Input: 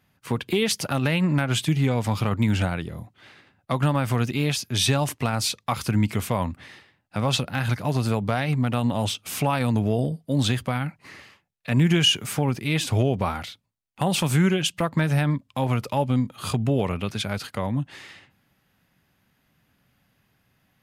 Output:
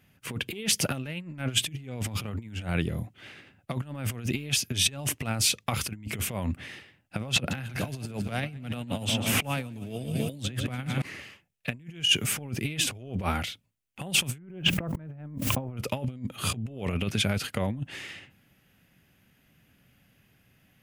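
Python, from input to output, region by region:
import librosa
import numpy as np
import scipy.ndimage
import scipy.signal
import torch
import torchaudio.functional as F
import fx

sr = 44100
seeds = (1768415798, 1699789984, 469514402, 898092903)

y = fx.chain(x, sr, fx.echo_feedback(ms=148, feedback_pct=56, wet_db=-14),
    fx.band_squash(depth_pct=100), at=(7.36, 11.02))
y = fx.chain(y, sr, fx.lowpass(hz=1100.0, slope=12),
    fx.quant_dither(seeds[0], bits=12, dither='triangular'),
    fx.sustainer(db_per_s=31.0), at=(14.38, 15.77))
y = fx.graphic_eq(y, sr, hz=(1000, 2000, 4000), db=(-8, -4, -11))
y = fx.over_compress(y, sr, threshold_db=-29.0, ratio=-0.5)
y = fx.peak_eq(y, sr, hz=2900.0, db=10.0, octaves=1.6)
y = F.gain(torch.from_numpy(y), -2.0).numpy()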